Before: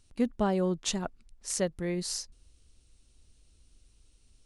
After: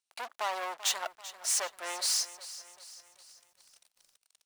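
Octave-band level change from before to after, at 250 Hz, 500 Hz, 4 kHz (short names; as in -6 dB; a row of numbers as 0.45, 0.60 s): -28.5, -10.0, +5.5 dB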